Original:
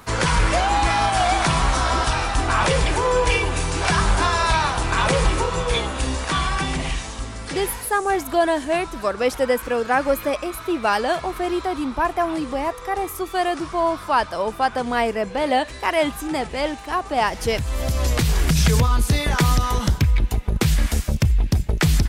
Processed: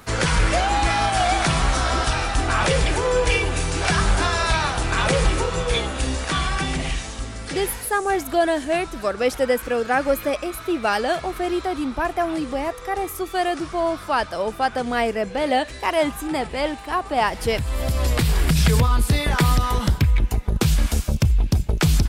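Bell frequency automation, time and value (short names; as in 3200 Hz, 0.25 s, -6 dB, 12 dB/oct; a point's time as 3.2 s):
bell -6.5 dB 0.32 oct
15.76 s 1000 Hz
16.24 s 6200 Hz
20.03 s 6200 Hz
20.66 s 1900 Hz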